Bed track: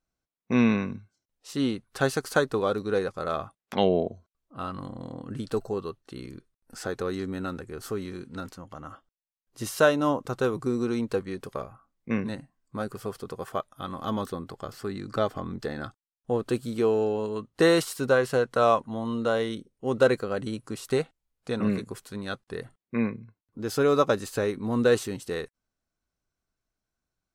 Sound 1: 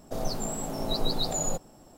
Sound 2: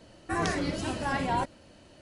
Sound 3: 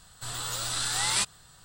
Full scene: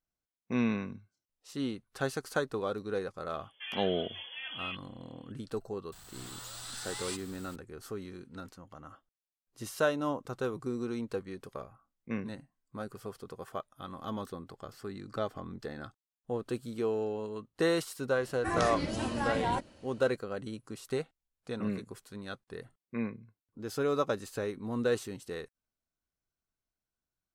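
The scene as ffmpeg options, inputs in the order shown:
-filter_complex "[2:a]asplit=2[a][b];[0:a]volume=-8dB[c];[a]lowpass=f=3k:t=q:w=0.5098,lowpass=f=3k:t=q:w=0.6013,lowpass=f=3k:t=q:w=0.9,lowpass=f=3k:t=q:w=2.563,afreqshift=-3500[d];[3:a]aeval=exprs='val(0)+0.5*0.0211*sgn(val(0))':c=same[e];[d]atrim=end=2.01,asetpts=PTS-STARTPTS,volume=-12.5dB,afade=t=in:d=0.004:c=hsin,afade=t=out:st=2.006:d=0.004:c=hsin,adelay=3310[f];[e]atrim=end=1.64,asetpts=PTS-STARTPTS,volume=-15dB,afade=t=in:d=0.004:c=hsin,afade=t=out:st=1.636:d=0.004:c=hsin,adelay=5920[g];[b]atrim=end=2.01,asetpts=PTS-STARTPTS,volume=-3dB,afade=t=in:d=0.004:c=hsin,afade=t=out:st=2.006:d=0.004:c=hsin,adelay=18150[h];[c][f][g][h]amix=inputs=4:normalize=0"

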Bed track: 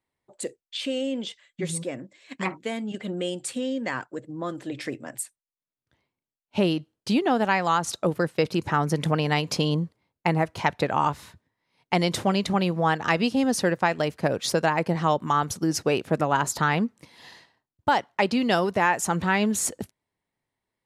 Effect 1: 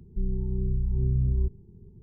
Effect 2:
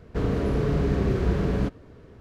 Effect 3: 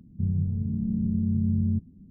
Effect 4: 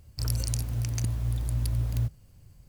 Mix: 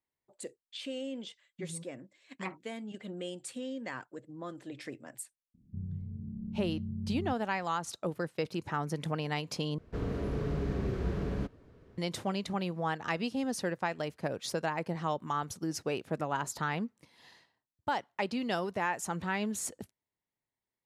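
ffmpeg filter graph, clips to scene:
-filter_complex "[0:a]volume=-10.5dB,asplit=2[a][b];[a]atrim=end=9.784[c];[2:a]atrim=end=2.2,asetpts=PTS-STARTPTS,volume=-9.5dB[d];[b]atrim=start=11.976[e];[3:a]atrim=end=2.1,asetpts=PTS-STARTPTS,volume=-13dB,afade=t=in:d=0.004:c=hsin,afade=t=out:st=2.096:d=0.004:c=hsin,adelay=5540[f];[c][d]acrossfade=d=0.004:c1=hsin:c2=hsin[g];[g][e]acrossfade=d=0.004:c1=hsin:c2=hsin[h];[h][f]amix=inputs=2:normalize=0"

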